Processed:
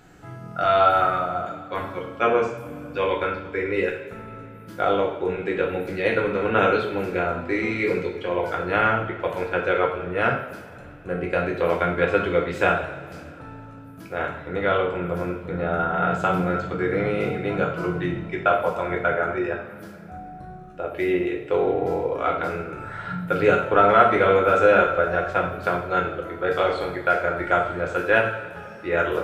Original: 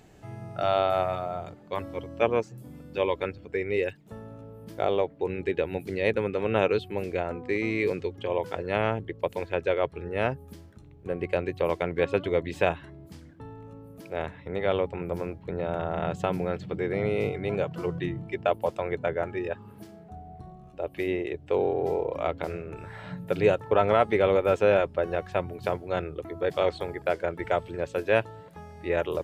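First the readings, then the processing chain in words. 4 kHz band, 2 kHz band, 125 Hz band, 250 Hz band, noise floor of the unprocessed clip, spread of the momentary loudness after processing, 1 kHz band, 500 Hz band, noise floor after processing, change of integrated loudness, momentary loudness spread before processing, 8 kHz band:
+4.0 dB, +9.5 dB, +3.5 dB, +5.0 dB, -50 dBFS, 18 LU, +9.0 dB, +3.5 dB, -41 dBFS, +5.5 dB, 19 LU, n/a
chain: bell 1400 Hz +14 dB 0.36 oct; two-slope reverb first 0.58 s, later 3.1 s, from -18 dB, DRR -1.5 dB

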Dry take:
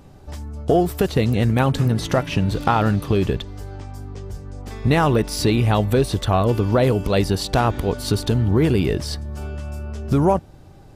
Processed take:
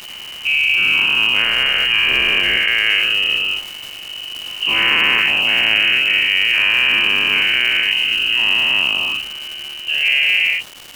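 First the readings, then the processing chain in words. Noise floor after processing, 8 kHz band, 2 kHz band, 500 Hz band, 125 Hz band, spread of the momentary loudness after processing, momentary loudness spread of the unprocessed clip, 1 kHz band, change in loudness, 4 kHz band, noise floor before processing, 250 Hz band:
-32 dBFS, -2.0 dB, +19.0 dB, -14.0 dB, -23.5 dB, 14 LU, 17 LU, -5.0 dB, +6.5 dB, +19.5 dB, -44 dBFS, -15.5 dB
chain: spectral dilation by 0.48 s; inverted band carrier 3000 Hz; upward compressor, threshold -30 dBFS; crackle 440/s -19 dBFS; gain -4.5 dB

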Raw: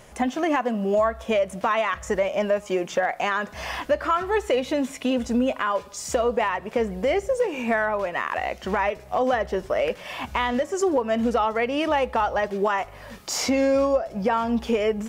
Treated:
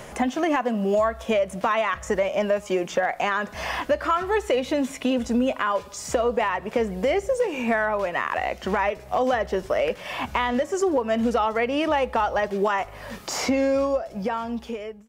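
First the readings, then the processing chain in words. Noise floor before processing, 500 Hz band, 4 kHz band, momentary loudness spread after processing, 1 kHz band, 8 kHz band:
-44 dBFS, -0.5 dB, -0.5 dB, 5 LU, 0.0 dB, -1.5 dB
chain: ending faded out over 1.60 s; three-band squash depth 40%

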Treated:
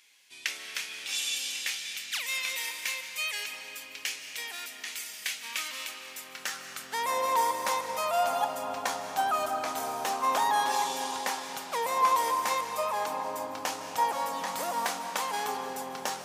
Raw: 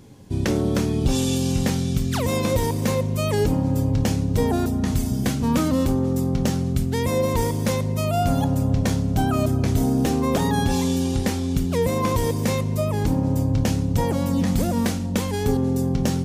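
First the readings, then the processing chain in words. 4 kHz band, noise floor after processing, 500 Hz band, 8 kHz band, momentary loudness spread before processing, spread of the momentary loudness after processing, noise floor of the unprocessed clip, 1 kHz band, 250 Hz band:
-0.5 dB, -46 dBFS, -11.0 dB, -2.5 dB, 3 LU, 10 LU, -25 dBFS, +2.0 dB, -26.5 dB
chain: high-pass sweep 2300 Hz -> 940 Hz, 5.98–7.12; digital reverb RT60 4.1 s, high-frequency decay 0.65×, pre-delay 0.115 s, DRR 5.5 dB; gain -3.5 dB

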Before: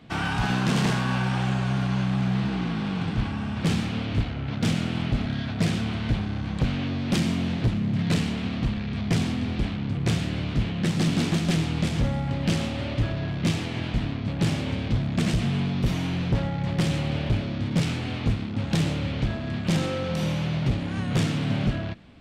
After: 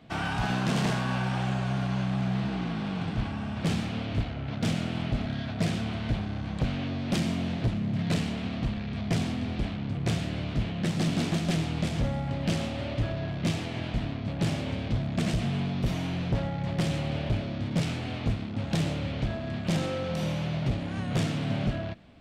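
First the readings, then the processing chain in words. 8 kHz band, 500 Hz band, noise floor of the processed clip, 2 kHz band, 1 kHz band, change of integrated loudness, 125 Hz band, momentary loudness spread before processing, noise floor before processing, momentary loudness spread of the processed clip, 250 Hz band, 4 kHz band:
-4.0 dB, -1.5 dB, -35 dBFS, -4.0 dB, -2.5 dB, -4.0 dB, -4.0 dB, 4 LU, -31 dBFS, 4 LU, -4.0 dB, -4.0 dB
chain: bell 650 Hz +5.5 dB 0.43 oct; gain -4 dB

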